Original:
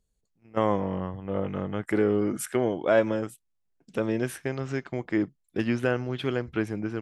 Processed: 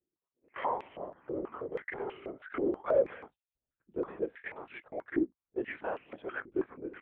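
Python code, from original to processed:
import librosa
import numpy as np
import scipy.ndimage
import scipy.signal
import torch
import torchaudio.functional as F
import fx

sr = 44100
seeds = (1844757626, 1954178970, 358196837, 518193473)

p1 = fx.backlash(x, sr, play_db=-23.0)
p2 = x + F.gain(torch.from_numpy(p1), -6.0).numpy()
p3 = fx.lpc_vocoder(p2, sr, seeds[0], excitation='whisper', order=10)
p4 = 10.0 ** (-10.5 / 20.0) * np.tanh(p3 / 10.0 ** (-10.5 / 20.0))
y = fx.filter_held_bandpass(p4, sr, hz=6.2, low_hz=350.0, high_hz=2600.0)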